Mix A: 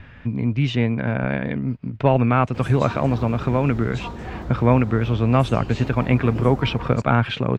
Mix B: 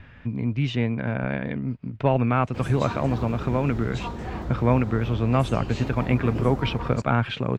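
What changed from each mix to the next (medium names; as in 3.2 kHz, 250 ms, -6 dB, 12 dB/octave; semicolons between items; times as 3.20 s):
speech -4.0 dB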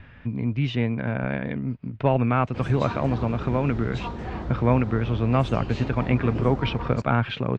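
master: add low-pass 5.1 kHz 12 dB/octave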